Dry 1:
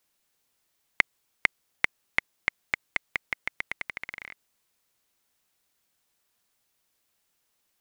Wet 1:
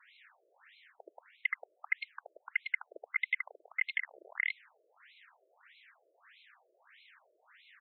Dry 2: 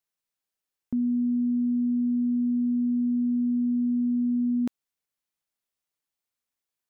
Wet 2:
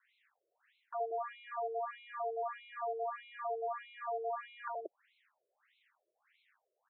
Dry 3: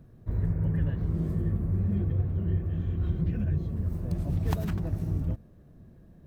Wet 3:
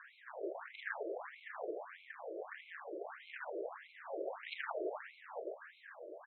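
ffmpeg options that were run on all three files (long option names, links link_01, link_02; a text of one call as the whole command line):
ffmpeg -i in.wav -filter_complex "[0:a]equalizer=frequency=1800:width_type=o:width=0.78:gain=9,acrossover=split=430|1600[link_01][link_02][link_03];[link_03]aeval=exprs='(mod(4.73*val(0)+1,2)-1)/4.73':channel_layout=same[link_04];[link_01][link_02][link_04]amix=inputs=3:normalize=0,acontrast=68,aeval=exprs='(tanh(22.4*val(0)+0.4)-tanh(0.4))/22.4':channel_layout=same,lowshelf=frequency=190:gain=-6,aecho=1:1:75.8|180.8:0.794|0.562,afreqshift=-32,areverse,acompressor=threshold=-38dB:ratio=6,areverse,afftfilt=real='re*between(b*sr/1024,460*pow(3000/460,0.5+0.5*sin(2*PI*1.6*pts/sr))/1.41,460*pow(3000/460,0.5+0.5*sin(2*PI*1.6*pts/sr))*1.41)':imag='im*between(b*sr/1024,460*pow(3000/460,0.5+0.5*sin(2*PI*1.6*pts/sr))/1.41,460*pow(3000/460,0.5+0.5*sin(2*PI*1.6*pts/sr))*1.41)':win_size=1024:overlap=0.75,volume=12.5dB" out.wav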